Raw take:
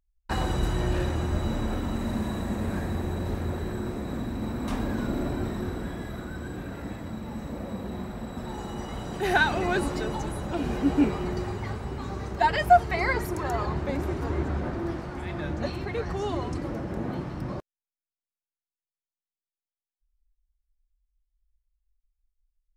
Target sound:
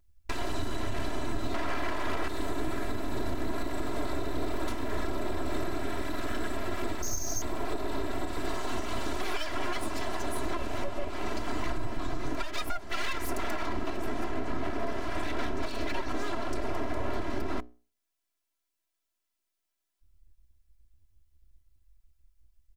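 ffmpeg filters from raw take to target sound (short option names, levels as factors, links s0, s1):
-filter_complex "[0:a]acompressor=threshold=0.0282:ratio=6,asettb=1/sr,asplit=3[s0][s1][s2];[s0]atrim=end=11.664[s3];[s1]atrim=start=11.66:end=12.27,asetpts=PTS-STARTPTS,afade=t=in:d=0.004:c=qsin,afade=t=out:st=0.606:d=0.004:c=qsin,lowshelf=f=100:t=q:w=3:g=6.5[s4];[s2]atrim=start=12.266[s5];[s3][s4]acrossfade=d=0.004:c1=hsin:c2=qsin[s6];[s6][s5]acrossfade=d=0.004:c1=qsin:c2=hsin,bandreject=f=60:t=h:w=6,bandreject=f=120:t=h:w=6,bandreject=f=180:t=h:w=6,bandreject=f=240:t=h:w=6,bandreject=f=300:t=h:w=6,bandreject=f=360:t=h:w=6,bandreject=f=420:t=h:w=6,asettb=1/sr,asplit=3[s7][s8][s9];[s7]atrim=end=1.544[s10];[s8]atrim=start=1.54:end=2.28,asetpts=PTS-STARTPTS,afade=t=in:d=0.004:c=qsin,afade=t=out:st=0.736:d=0.004:c=qsin,equalizer=f=920:w=0.5:g=14.5[s11];[s9]atrim=start=2.276[s12];[s10][s11]acrossfade=d=0.004:c1=hsin:c2=qsin[s13];[s13][s12]acrossfade=d=0.004:c1=qsin:c2=hsin,asettb=1/sr,asplit=3[s14][s15][s16];[s14]atrim=end=7.024[s17];[s15]atrim=start=7.02:end=7.42,asetpts=PTS-STARTPTS,afade=t=in:d=0.004:c=qsin,afade=t=out:st=0.396:d=0.004:c=qsin,lowpass=f=2900:t=q:w=0.5098,lowpass=f=2900:t=q:w=0.6013,lowpass=f=2900:t=q:w=0.9,lowpass=f=2900:t=q:w=2.563,afreqshift=-3400[s18];[s16]atrim=start=7.416[s19];[s17][s18]acrossfade=d=0.004:c1=hsin:c2=qsin[s20];[s20][s19]acrossfade=d=0.004:c1=qsin:c2=hsin,aeval=exprs='abs(val(0))':c=same,aecho=1:1:3:0.83,alimiter=level_in=1.58:limit=0.0631:level=0:latency=1:release=398,volume=0.631,volume=2.66"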